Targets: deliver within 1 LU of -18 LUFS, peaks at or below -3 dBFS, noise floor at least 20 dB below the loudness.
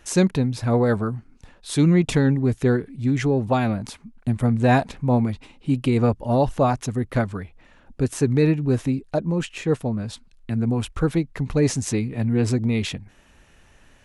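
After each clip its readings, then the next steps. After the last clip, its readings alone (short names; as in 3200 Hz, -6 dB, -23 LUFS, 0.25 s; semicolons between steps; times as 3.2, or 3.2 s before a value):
loudness -22.5 LUFS; peak -4.5 dBFS; loudness target -18.0 LUFS
-> gain +4.5 dB; limiter -3 dBFS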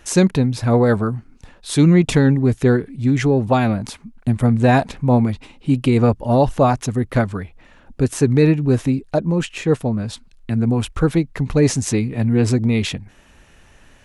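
loudness -18.0 LUFS; peak -3.0 dBFS; noise floor -50 dBFS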